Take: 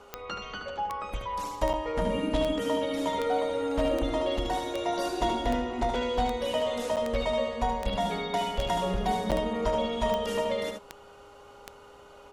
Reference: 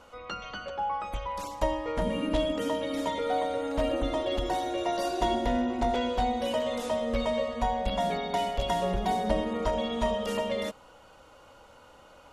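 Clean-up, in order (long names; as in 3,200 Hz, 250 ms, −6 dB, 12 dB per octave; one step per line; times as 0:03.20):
click removal
hum removal 406.5 Hz, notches 3
repair the gap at 0:01.73/0:06.96/0:09.31, 7.4 ms
echo removal 75 ms −6 dB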